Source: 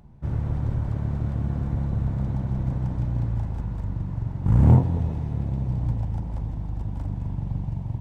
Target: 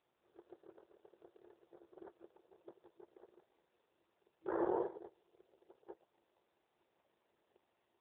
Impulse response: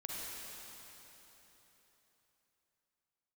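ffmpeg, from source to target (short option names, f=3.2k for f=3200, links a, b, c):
-af "agate=range=-32dB:threshold=-20dB:ratio=16:detection=peak,afftfilt=real='re*between(b*sr/4096,330,1800)':imag='im*between(b*sr/4096,330,1800)':win_size=4096:overlap=0.75,equalizer=f=940:w=0.7:g=-8,alimiter=level_in=8dB:limit=-24dB:level=0:latency=1:release=58,volume=-8dB,volume=7.5dB" -ar 8000 -c:a libopencore_amrnb -b:a 7400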